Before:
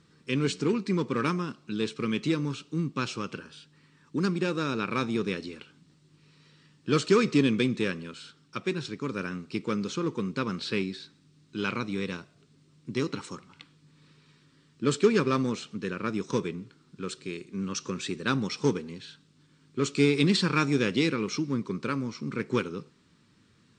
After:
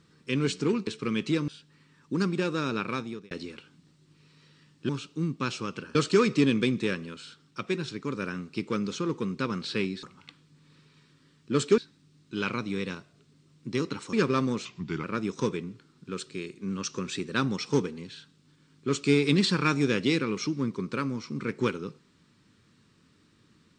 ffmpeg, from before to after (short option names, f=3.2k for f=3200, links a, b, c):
-filter_complex "[0:a]asplit=11[a][b][c][d][e][f][g][h][i][j][k];[a]atrim=end=0.872[l];[b]atrim=start=1.838:end=2.452[m];[c]atrim=start=3.508:end=5.34,asetpts=PTS-STARTPTS,afade=t=out:st=1.312:d=0.52[n];[d]atrim=start=5.34:end=6.922,asetpts=PTS-STARTPTS,afade=t=in:d=0.004:c=hsin[o];[e]atrim=start=2.448:end=3.512[p];[f]atrim=start=6.918:end=11.002[q];[g]atrim=start=13.348:end=15.102[r];[h]atrim=start=10.998:end=13.352[s];[i]atrim=start=15.098:end=15.624[t];[j]atrim=start=15.62:end=15.95,asetpts=PTS-STARTPTS,asetrate=37485,aresample=44100,atrim=end_sample=17121,asetpts=PTS-STARTPTS[u];[k]atrim=start=15.946[v];[l][m]acrossfade=d=0.004:c1=hsin:c2=hsin[w];[n][o]concat=n=2:v=0:a=1[x];[w][x]acrossfade=d=0.004:c1=hsin:c2=hsin[y];[y][p]acrossfade=d=0.004:c1=hsin:c2=hsin[z];[z][q]acrossfade=d=0.004:c1=hsin:c2=hsin[aa];[aa][r]acrossfade=d=0.004:c1=hsin:c2=hsin[ab];[ab][s]acrossfade=d=0.004:c1=hsin:c2=hsin[ac];[ac][t]acrossfade=d=0.004:c1=hsin:c2=hsin[ad];[ad][u]acrossfade=d=0.004:c1=hsin:c2=hsin[ae];[ae][v]acrossfade=d=0.004:c1=hsin:c2=hsin"